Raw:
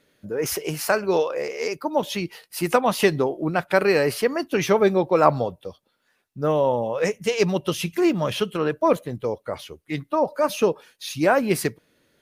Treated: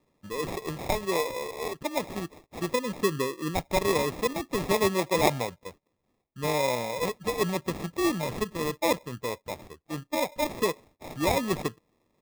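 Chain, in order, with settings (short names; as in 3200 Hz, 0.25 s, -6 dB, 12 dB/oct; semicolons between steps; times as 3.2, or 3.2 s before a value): spectral delete 2.69–3.54, 560–8200 Hz; sample-rate reducer 1500 Hz, jitter 0%; gain -6.5 dB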